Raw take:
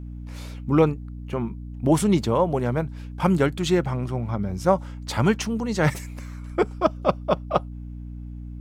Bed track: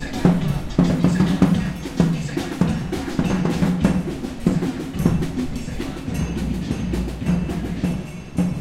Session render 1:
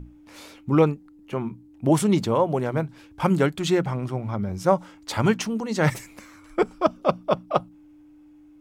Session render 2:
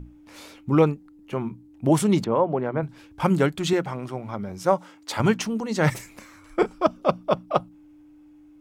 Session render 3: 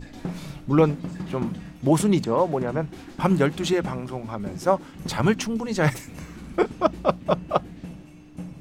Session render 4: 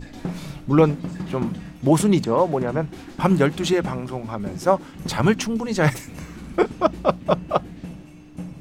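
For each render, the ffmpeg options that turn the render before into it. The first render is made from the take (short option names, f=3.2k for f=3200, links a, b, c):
-af "bandreject=f=60:t=h:w=6,bandreject=f=120:t=h:w=6,bandreject=f=180:t=h:w=6,bandreject=f=240:t=h:w=6"
-filter_complex "[0:a]asettb=1/sr,asplit=3[a][b][c];[a]atrim=end=2.244[d];[b]atrim=start=2.24:end=2.83,asetpts=PTS-STARTPTS,afade=t=in:d=0.004:c=qsin,afade=t=out:st=0.586:d=0.004:c=qsin,highpass=150,lowpass=2k[e];[c]atrim=start=2.826[f];[d][e]acrossfade=d=0.004:c1=hsin:c2=qsin[g];[g][f]acrossfade=d=0.004:c1=qsin:c2=hsin,asettb=1/sr,asplit=3[h][i][j];[h]atrim=end=3.734[k];[i]atrim=start=3.73:end=5.2,asetpts=PTS-STARTPTS,afade=t=in:d=0.004:c=qsin,afade=t=out:st=1.466:d=0.004:c=qsin,highpass=f=260:p=1[l];[j]atrim=start=5.196[m];[k][l]acrossfade=d=0.004:c1=hsin:c2=qsin[n];[n][m]acrossfade=d=0.004:c1=qsin:c2=hsin,asettb=1/sr,asplit=3[o][p][q];[o]atrim=end=5.954[r];[p]atrim=start=5.95:end=6.7,asetpts=PTS-STARTPTS,afade=t=in:d=0.004:c=qsin,afade=t=out:st=0.746:d=0.004:c=qsin,asplit=2[s][t];[t]adelay=32,volume=-11dB[u];[s][u]amix=inputs=2:normalize=0,atrim=end_sample=33075[v];[q]atrim=start=6.696[w];[r][v]acrossfade=d=0.004:c1=hsin:c2=qsin[x];[x][w]acrossfade=d=0.004:c1=qsin:c2=hsin"
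-filter_complex "[1:a]volume=-16dB[a];[0:a][a]amix=inputs=2:normalize=0"
-af "volume=2.5dB,alimiter=limit=-3dB:level=0:latency=1"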